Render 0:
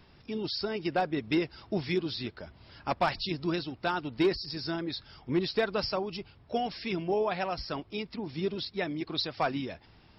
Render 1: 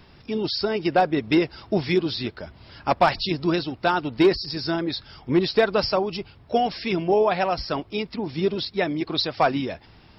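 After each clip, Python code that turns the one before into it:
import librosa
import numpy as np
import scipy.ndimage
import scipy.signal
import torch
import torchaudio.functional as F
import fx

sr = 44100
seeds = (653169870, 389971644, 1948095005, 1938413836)

y = fx.dynamic_eq(x, sr, hz=630.0, q=0.8, threshold_db=-41.0, ratio=4.0, max_db=3)
y = F.gain(torch.from_numpy(y), 7.0).numpy()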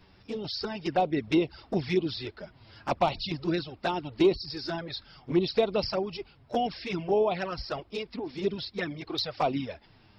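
y = fx.env_flanger(x, sr, rest_ms=11.6, full_db=-16.5)
y = F.gain(torch.from_numpy(y), -4.0).numpy()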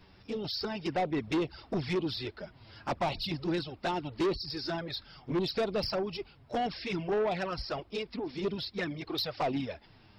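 y = 10.0 ** (-25.0 / 20.0) * np.tanh(x / 10.0 ** (-25.0 / 20.0))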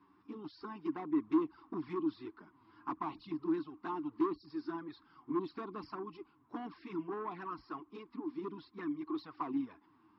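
y = fx.double_bandpass(x, sr, hz=570.0, octaves=1.8)
y = F.gain(torch.from_numpy(y), 4.0).numpy()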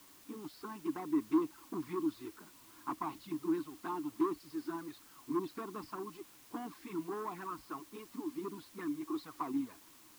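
y = fx.quant_dither(x, sr, seeds[0], bits=10, dither='triangular')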